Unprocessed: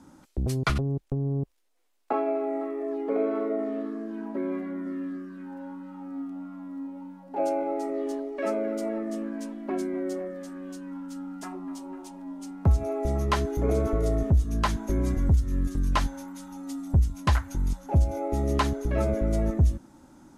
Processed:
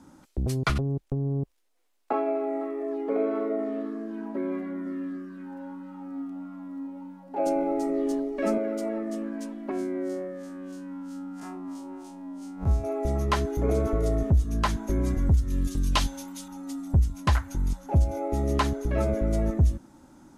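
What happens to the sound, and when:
0:07.46–0:08.58: bass and treble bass +14 dB, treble +4 dB
0:09.71–0:12.84: spectrum smeared in time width 85 ms
0:15.50–0:16.48: high shelf with overshoot 2,300 Hz +6.5 dB, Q 1.5

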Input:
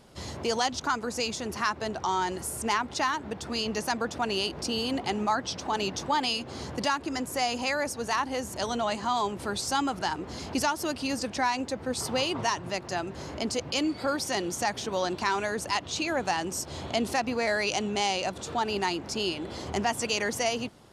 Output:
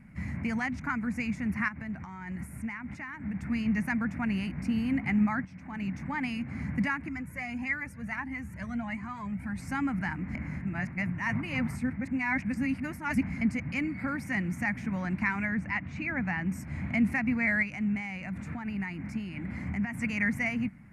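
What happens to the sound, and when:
0:01.68–0:03.34: downward compressor 4 to 1, threshold −35 dBFS
0:05.45–0:06.31: fade in, from −13 dB
0:07.08–0:09.58: flanger whose copies keep moving one way rising 1.6 Hz
0:10.35–0:13.41: reverse
0:15.45–0:16.52: high-frequency loss of the air 98 metres
0:17.62–0:19.94: downward compressor 4 to 1, threshold −31 dBFS
whole clip: drawn EQ curve 120 Hz 0 dB, 190 Hz +6 dB, 270 Hz −2 dB, 400 Hz −24 dB, 640 Hz −17 dB, 1,200 Hz −12 dB, 2,200 Hz +4 dB, 3,300 Hz −30 dB, 6,200 Hz −25 dB, 11,000 Hz −17 dB; level +4.5 dB

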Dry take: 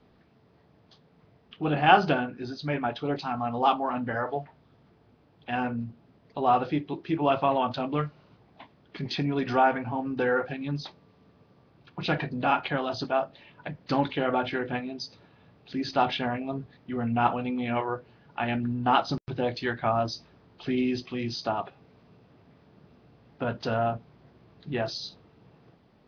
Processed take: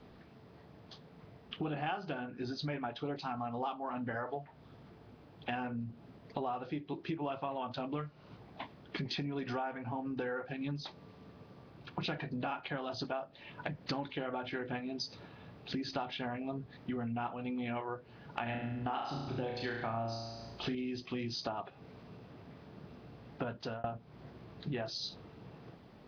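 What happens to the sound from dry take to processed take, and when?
0:18.43–0:20.75: flutter between parallel walls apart 6 metres, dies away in 0.69 s
0:23.42–0:23.84: fade out
whole clip: downward compressor 8 to 1, threshold −40 dBFS; level +4.5 dB

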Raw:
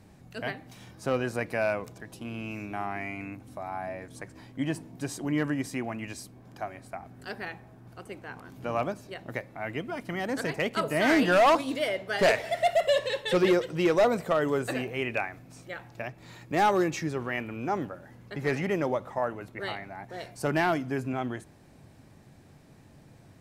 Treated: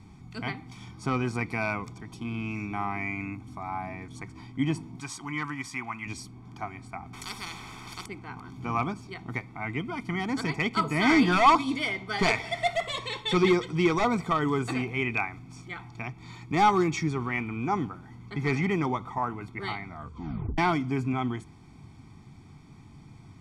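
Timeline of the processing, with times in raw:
0:05.00–0:06.06: low shelf with overshoot 730 Hz −10 dB, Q 1.5
0:07.13–0:08.06: every bin compressed towards the loudest bin 4 to 1
0:19.85: tape stop 0.73 s
whole clip: low-pass filter 7,000 Hz 12 dB per octave; notch filter 1,400 Hz, Q 21; comb filter 0.9 ms, depth 100%

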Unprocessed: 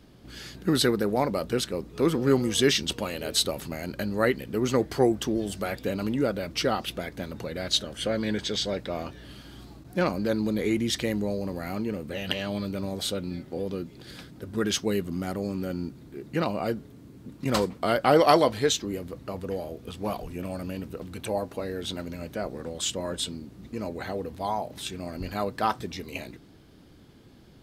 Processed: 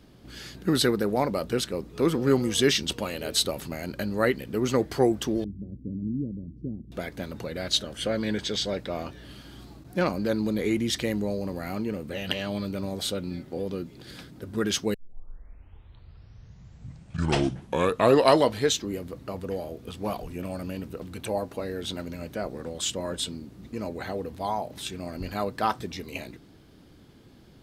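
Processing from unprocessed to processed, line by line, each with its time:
0:05.44–0:06.92: inverse Chebyshev low-pass filter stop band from 940 Hz, stop band 60 dB
0:14.94: tape start 3.65 s

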